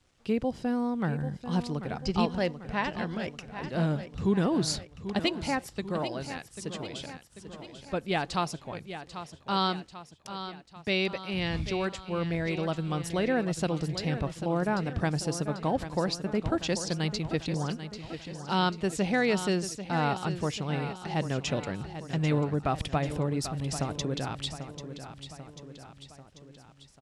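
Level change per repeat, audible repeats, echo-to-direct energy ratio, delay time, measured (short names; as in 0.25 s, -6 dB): -5.0 dB, 4, -9.5 dB, 0.791 s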